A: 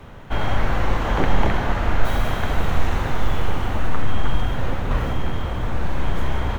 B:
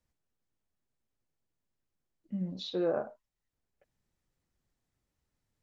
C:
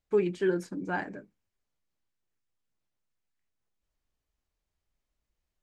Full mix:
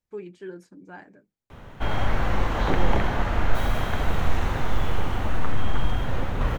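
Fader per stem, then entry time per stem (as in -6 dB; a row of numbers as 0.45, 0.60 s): -3.0, -5.0, -11.0 dB; 1.50, 0.00, 0.00 s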